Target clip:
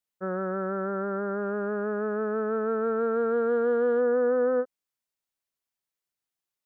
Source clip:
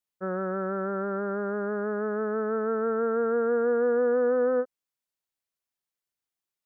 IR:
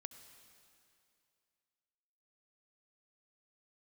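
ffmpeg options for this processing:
-filter_complex "[0:a]asettb=1/sr,asplit=3[link_01][link_02][link_03];[link_01]atrim=end=1.414[link_04];[link_02]atrim=start=1.41:end=4.01,asetpts=PTS-STARTPTS,afade=type=in:duration=0.004:curve=qsin,afade=type=out:start_time=2.596:duration=0.004:curve=qsin,aeval=exprs='0.15*(cos(1*acos(clip(val(0)/0.15,-1,1)))-cos(1*PI/2))+0.00168*(cos(5*acos(clip(val(0)/0.15,-1,1)))-cos(5*PI/2))':channel_layout=same[link_05];[link_03]atrim=start=4.006[link_06];[link_04][link_05]acrossfade=duration=0.004:curve1=hsin:curve2=qsin[link_07];[link_07][link_06]acrossfade=duration=0.004:curve1=qsin:curve2=hsin"

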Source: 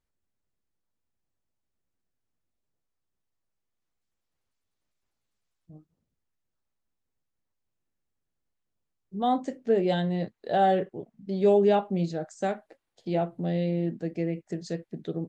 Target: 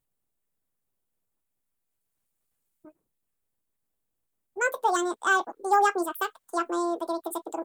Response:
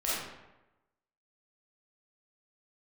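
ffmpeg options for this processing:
-af "aexciter=amount=3.1:drive=5.7:freq=3700,asetrate=88200,aresample=44100"

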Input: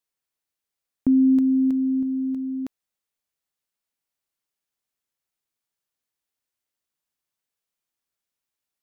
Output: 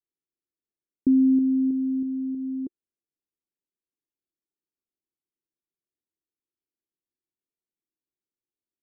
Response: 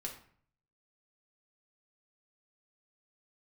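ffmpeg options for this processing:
-af "adynamicequalizer=threshold=0.0447:dfrequency=270:dqfactor=2.4:tfrequency=270:tqfactor=2.4:attack=5:release=100:ratio=0.375:range=1.5:mode=cutabove:tftype=bell,lowpass=frequency=350:width_type=q:width=3.6,volume=-7dB"

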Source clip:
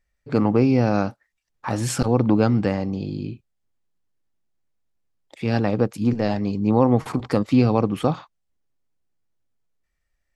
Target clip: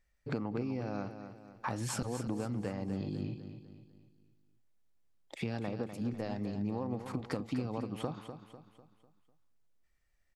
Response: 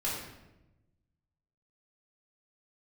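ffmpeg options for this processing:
-af "acompressor=threshold=-32dB:ratio=8,aecho=1:1:249|498|747|996|1245:0.335|0.147|0.0648|0.0285|0.0126,volume=-1.5dB"

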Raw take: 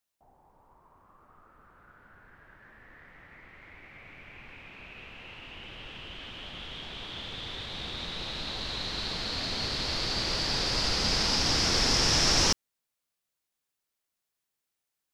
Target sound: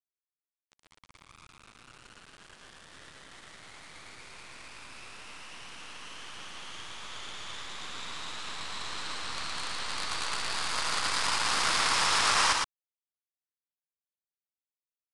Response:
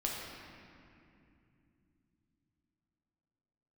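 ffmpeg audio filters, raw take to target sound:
-filter_complex "[0:a]highpass=frequency=1100:width_type=q:width=2.6,equalizer=frequency=5600:width=2.1:gain=-10,acrusher=bits=5:dc=4:mix=0:aa=0.000001,asplit=2[link_01][link_02];[link_02]aecho=0:1:115:0.708[link_03];[link_01][link_03]amix=inputs=2:normalize=0,aresample=22050,aresample=44100"

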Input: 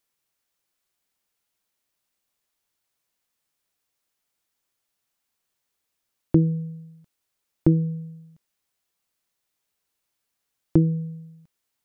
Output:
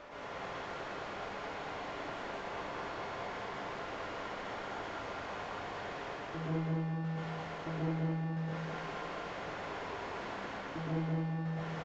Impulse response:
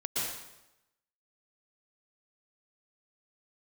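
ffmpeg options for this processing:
-filter_complex "[0:a]aeval=exprs='val(0)+0.5*0.0708*sgn(val(0))':channel_layout=same,lowpass=1000,lowshelf=frequency=470:gain=-11,areverse,acompressor=mode=upward:threshold=-37dB:ratio=2.5,areverse,aeval=exprs='val(0)+0.00501*sin(2*PI*590*n/s)':channel_layout=same,aresample=16000,asoftclip=type=tanh:threshold=-30dB,aresample=44100,aecho=1:1:211|422|633|844|1055|1266:0.708|0.319|0.143|0.0645|0.029|0.0131[link_01];[1:a]atrim=start_sample=2205[link_02];[link_01][link_02]afir=irnorm=-1:irlink=0,volume=-6dB"

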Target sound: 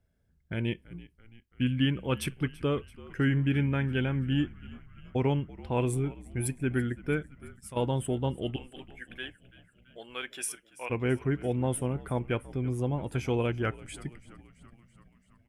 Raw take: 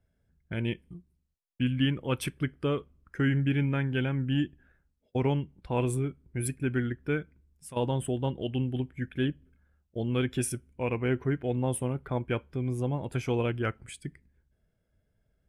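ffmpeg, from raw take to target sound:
ffmpeg -i in.wav -filter_complex "[0:a]asettb=1/sr,asplit=3[link_01][link_02][link_03];[link_01]atrim=end=8.564[link_04];[link_02]atrim=start=8.56:end=10.9,asetpts=PTS-STARTPTS,afade=type=in:duration=0.004:curve=qsin,afade=type=out:start_time=2.336:duration=0.004:curve=qsin,highpass=860[link_05];[link_03]atrim=start=10.896[link_06];[link_04][link_05]acrossfade=duration=0.004:curve1=hsin:curve2=qsin[link_07];[link_07][link_06]acrossfade=duration=0.004:curve1=qsin:curve2=hsin,asplit=7[link_08][link_09][link_10][link_11][link_12][link_13][link_14];[link_09]adelay=334,afreqshift=-61,volume=-19.5dB[link_15];[link_10]adelay=668,afreqshift=-122,volume=-23.4dB[link_16];[link_11]adelay=1002,afreqshift=-183,volume=-27.3dB[link_17];[link_12]adelay=1336,afreqshift=-244,volume=-31.1dB[link_18];[link_13]adelay=1670,afreqshift=-305,volume=-35dB[link_19];[link_14]adelay=2004,afreqshift=-366,volume=-38.9dB[link_20];[link_08][link_15][link_16][link_17][link_18][link_19][link_20]amix=inputs=7:normalize=0" out.wav

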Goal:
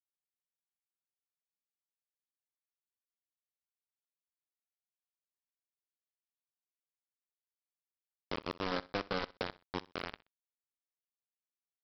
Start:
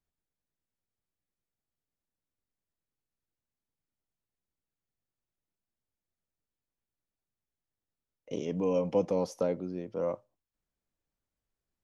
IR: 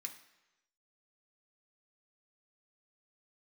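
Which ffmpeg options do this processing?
-af "highpass=frequency=72:width=0.5412,highpass=frequency=72:width=1.3066,acompressor=threshold=-46dB:ratio=3,flanger=delay=0.2:depth=4:regen=72:speed=0.41:shape=triangular,aresample=11025,acrusher=bits=6:mix=0:aa=0.000001,aresample=44100,aecho=1:1:63|126:0.1|0.027,volume=10.5dB"

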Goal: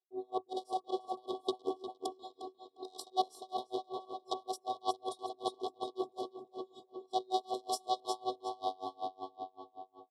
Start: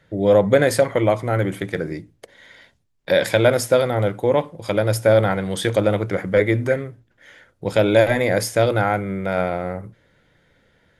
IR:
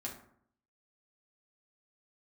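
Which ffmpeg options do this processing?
-filter_complex "[0:a]agate=range=-33dB:threshold=-46dB:ratio=3:detection=peak,areverse,acompressor=threshold=-28dB:ratio=10,areverse,afftfilt=real='hypot(re,im)*cos(PI*b)':imag='0':win_size=512:overlap=0.75,aeval=exprs='0.133*(cos(1*acos(clip(val(0)/0.133,-1,1)))-cos(1*PI/2))+0.00376*(cos(2*acos(clip(val(0)/0.133,-1,1)))-cos(2*PI/2))+0.00237*(cos(3*acos(clip(val(0)/0.133,-1,1)))-cos(3*PI/2))+0.0531*(cos(6*acos(clip(val(0)/0.133,-1,1)))-cos(6*PI/2))+0.0376*(cos(8*acos(clip(val(0)/0.133,-1,1)))-cos(8*PI/2))':channel_layout=same,highpass=250,equalizer=frequency=1500:width_type=q:width=4:gain=-10,equalizer=frequency=2300:width_type=q:width=4:gain=-5,equalizer=frequency=6100:width_type=q:width=4:gain=-9,lowpass=frequency=8400:width=0.5412,lowpass=frequency=8400:width=1.3066,asplit=2[link_01][link_02];[link_02]adelay=385,lowpass=frequency=3400:poles=1,volume=-3dB,asplit=2[link_03][link_04];[link_04]adelay=385,lowpass=frequency=3400:poles=1,volume=0.55,asplit=2[link_05][link_06];[link_06]adelay=385,lowpass=frequency=3400:poles=1,volume=0.55,asplit=2[link_07][link_08];[link_08]adelay=385,lowpass=frequency=3400:poles=1,volume=0.55,asplit=2[link_09][link_10];[link_10]adelay=385,lowpass=frequency=3400:poles=1,volume=0.55,asplit=2[link_11][link_12];[link_12]adelay=385,lowpass=frequency=3400:poles=1,volume=0.55,asplit=2[link_13][link_14];[link_14]adelay=385,lowpass=frequency=3400:poles=1,volume=0.55,asplit=2[link_15][link_16];[link_16]adelay=385,lowpass=frequency=3400:poles=1,volume=0.55[link_17];[link_03][link_05][link_07][link_09][link_11][link_13][link_15][link_17]amix=inputs=8:normalize=0[link_18];[link_01][link_18]amix=inputs=2:normalize=0,asetrate=48000,aresample=44100,asuperstop=centerf=1900:order=20:qfactor=0.95,aeval=exprs='val(0)*pow(10,-31*(0.5-0.5*cos(2*PI*5.3*n/s))/20)':channel_layout=same,volume=6.5dB"

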